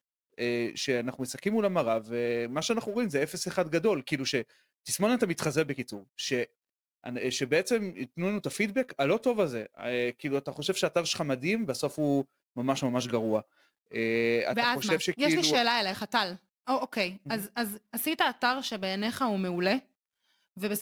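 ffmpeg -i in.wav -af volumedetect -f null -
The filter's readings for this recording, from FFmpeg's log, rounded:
mean_volume: -30.0 dB
max_volume: -12.1 dB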